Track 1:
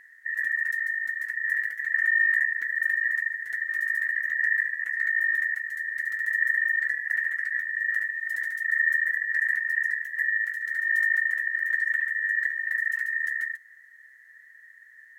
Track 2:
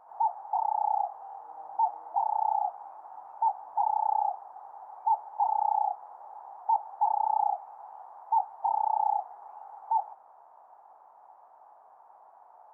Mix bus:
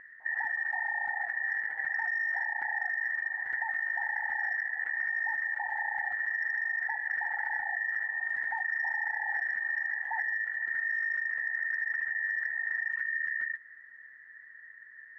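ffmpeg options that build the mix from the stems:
-filter_complex "[0:a]aeval=exprs='0.266*sin(PI/2*1.78*val(0)/0.266)':c=same,volume=-1.5dB[a];[1:a]acompressor=threshold=-28dB:ratio=6,adelay=200,volume=-4dB[b];[a][b]amix=inputs=2:normalize=0,lowpass=1.3k,acompressor=threshold=-29dB:ratio=6"

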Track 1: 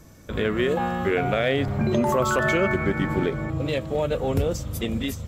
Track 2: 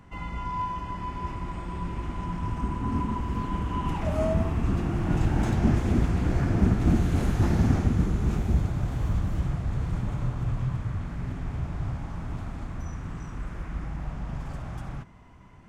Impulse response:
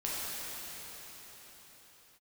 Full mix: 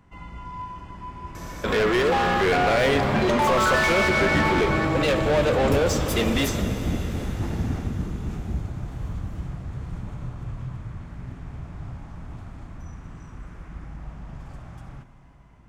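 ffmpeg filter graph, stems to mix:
-filter_complex "[0:a]asplit=2[a][b];[b]highpass=f=720:p=1,volume=26dB,asoftclip=type=tanh:threshold=-11dB[c];[a][c]amix=inputs=2:normalize=0,lowpass=f=3.8k:p=1,volume=-6dB,adelay=1350,volume=-5dB,asplit=2[d][e];[e]volume=-11.5dB[f];[1:a]volume=-6dB,asplit=2[g][h];[h]volume=-15.5dB[i];[2:a]atrim=start_sample=2205[j];[f][i]amix=inputs=2:normalize=0[k];[k][j]afir=irnorm=-1:irlink=0[l];[d][g][l]amix=inputs=3:normalize=0"

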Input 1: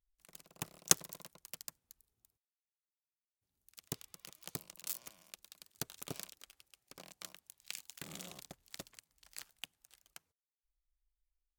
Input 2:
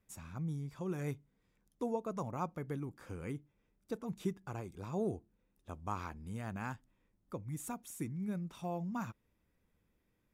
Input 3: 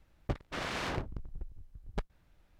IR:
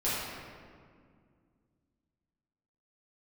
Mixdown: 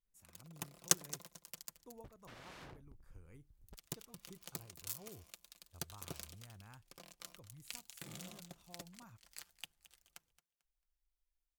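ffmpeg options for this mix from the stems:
-filter_complex "[0:a]aecho=1:1:5.8:0.34,volume=-3.5dB,asplit=2[a][b];[b]volume=-16.5dB[c];[1:a]asubboost=boost=6.5:cutoff=84,adelay=50,volume=-18dB[d];[2:a]adelay=1750,volume=-16dB[e];[d][e]amix=inputs=2:normalize=0,highshelf=f=11k:g=12,alimiter=level_in=19dB:limit=-24dB:level=0:latency=1:release=260,volume=-19dB,volume=0dB[f];[c]aecho=0:1:222|444|666|888:1|0.24|0.0576|0.0138[g];[a][f][g]amix=inputs=3:normalize=0"

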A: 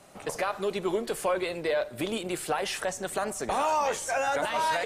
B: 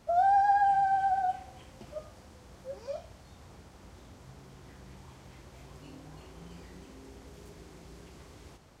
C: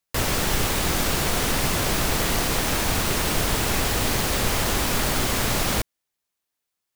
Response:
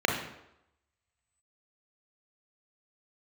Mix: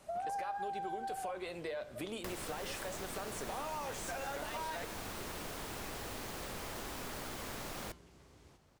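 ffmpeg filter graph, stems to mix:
-filter_complex "[0:a]alimiter=limit=-22dB:level=0:latency=1:release=418,volume=-2dB[a];[1:a]volume=-5dB[b];[2:a]acrossover=split=230|1700[c][d][e];[c]acompressor=threshold=-42dB:ratio=4[f];[d]acompressor=threshold=-37dB:ratio=4[g];[e]acompressor=threshold=-40dB:ratio=4[h];[f][g][h]amix=inputs=3:normalize=0,adelay=2100,volume=-3.5dB[i];[a][b][i]amix=inputs=3:normalize=0,flanger=delay=5.3:depth=6.6:regen=-89:speed=0.26:shape=triangular,acompressor=threshold=-38dB:ratio=3"

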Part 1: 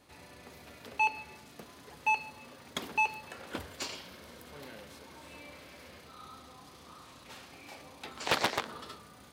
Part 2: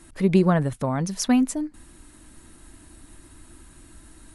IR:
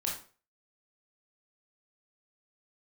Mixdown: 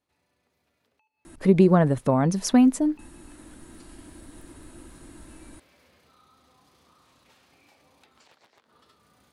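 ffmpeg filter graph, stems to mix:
-filter_complex "[0:a]alimiter=level_in=2dB:limit=-24dB:level=0:latency=1:release=189,volume=-2dB,acompressor=threshold=-49dB:ratio=20,volume=-7dB,afade=t=in:st=1.4:d=0.36:silence=0.223872[a];[1:a]equalizer=f=390:w=0.39:g=7.5,adelay=1250,volume=-1.5dB[b];[a][b]amix=inputs=2:normalize=0,alimiter=limit=-7dB:level=0:latency=1:release=363"

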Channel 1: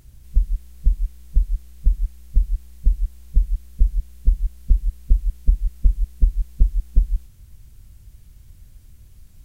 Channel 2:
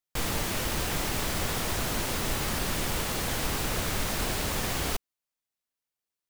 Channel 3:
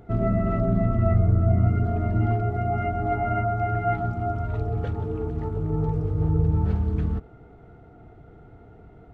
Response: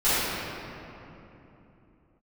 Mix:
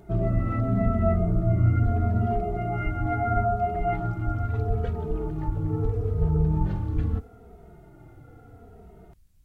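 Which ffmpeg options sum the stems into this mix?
-filter_complex "[0:a]volume=-14.5dB[a];[2:a]asplit=2[b][c];[c]adelay=2.8,afreqshift=-0.77[d];[b][d]amix=inputs=2:normalize=1,volume=2dB[e];[a][e]amix=inputs=2:normalize=0"

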